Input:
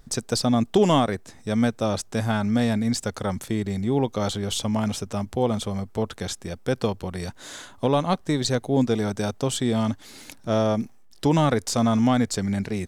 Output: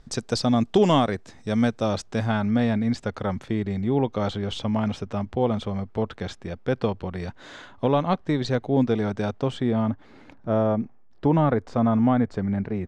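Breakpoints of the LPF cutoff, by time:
1.9 s 5700 Hz
2.57 s 3000 Hz
9.33 s 3000 Hz
9.9 s 1500 Hz

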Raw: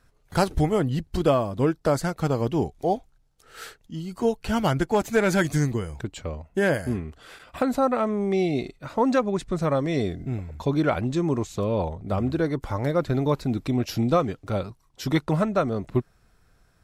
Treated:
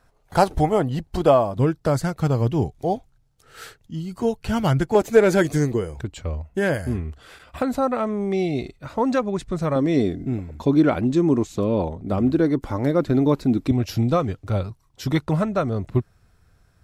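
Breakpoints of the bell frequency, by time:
bell +8.5 dB 1.1 oct
760 Hz
from 1.56 s 110 Hz
from 4.95 s 440 Hz
from 5.97 s 72 Hz
from 9.76 s 280 Hz
from 13.71 s 90 Hz

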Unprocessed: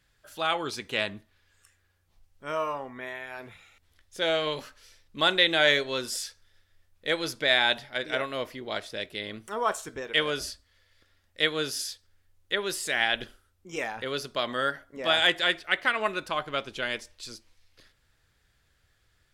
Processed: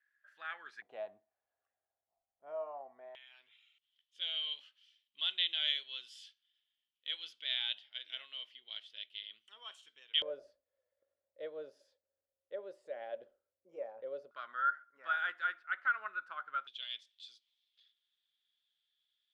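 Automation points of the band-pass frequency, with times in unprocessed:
band-pass, Q 11
1700 Hz
from 0.82 s 700 Hz
from 3.15 s 3100 Hz
from 10.22 s 560 Hz
from 14.31 s 1400 Hz
from 16.67 s 3400 Hz

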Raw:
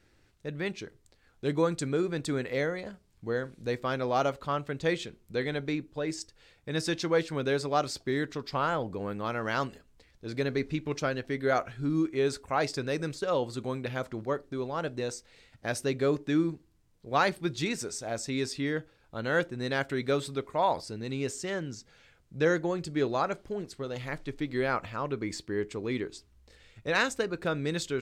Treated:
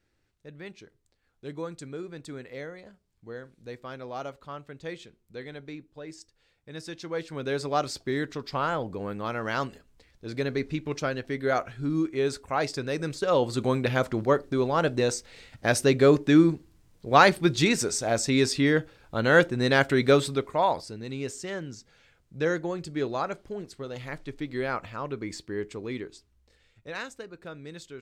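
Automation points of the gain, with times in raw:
6.95 s -9 dB
7.67 s +1 dB
12.94 s +1 dB
13.66 s +8.5 dB
20.13 s +8.5 dB
20.96 s -1 dB
25.73 s -1 dB
27.2 s -11 dB

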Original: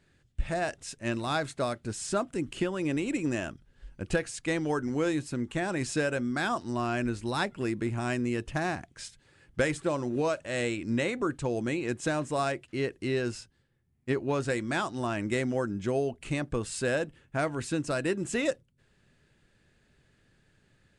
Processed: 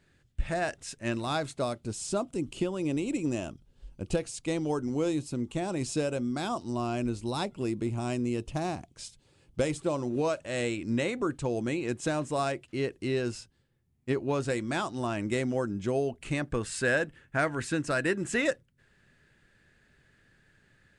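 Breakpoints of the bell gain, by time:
bell 1700 Hz 0.72 oct
0.97 s +1 dB
1.4 s -5.5 dB
2.14 s -13 dB
9.6 s -13 dB
10.26 s -3.5 dB
15.95 s -3.5 dB
16.7 s +7 dB

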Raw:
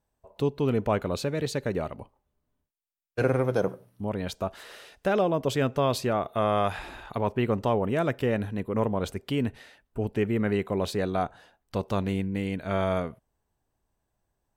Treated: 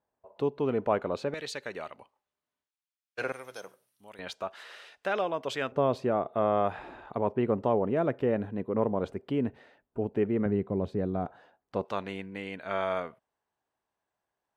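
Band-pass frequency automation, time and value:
band-pass, Q 0.52
750 Hz
from 1.34 s 2700 Hz
from 3.32 s 7800 Hz
from 4.19 s 1900 Hz
from 5.72 s 440 Hz
from 10.46 s 180 Hz
from 11.26 s 590 Hz
from 11.85 s 1500 Hz

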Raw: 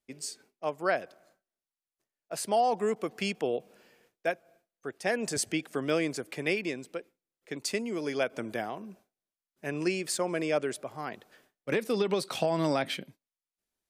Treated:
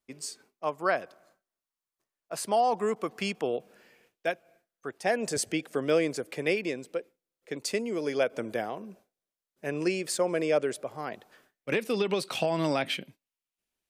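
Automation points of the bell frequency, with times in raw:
bell +6 dB 0.52 oct
3.41 s 1100 Hz
4.3 s 3400 Hz
5.29 s 500 Hz
11.05 s 500 Hz
11.71 s 2700 Hz

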